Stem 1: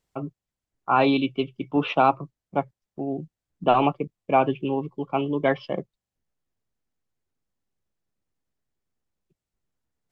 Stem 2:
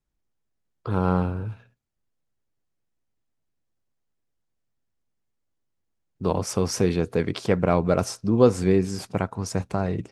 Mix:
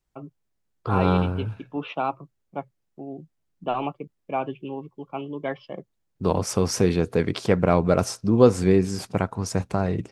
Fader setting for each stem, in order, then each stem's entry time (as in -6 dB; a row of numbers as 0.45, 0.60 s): -7.5, +1.5 dB; 0.00, 0.00 s